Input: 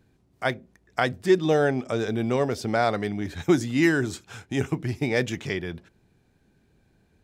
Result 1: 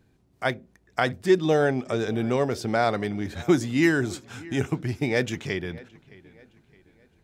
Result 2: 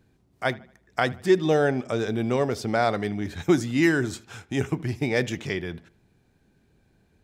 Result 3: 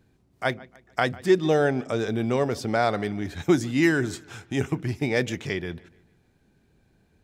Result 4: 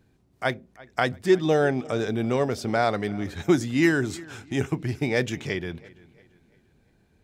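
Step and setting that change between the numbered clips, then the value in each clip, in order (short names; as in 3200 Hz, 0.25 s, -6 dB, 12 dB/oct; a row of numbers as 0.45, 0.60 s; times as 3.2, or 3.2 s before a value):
dark delay, time: 616, 77, 148, 341 ms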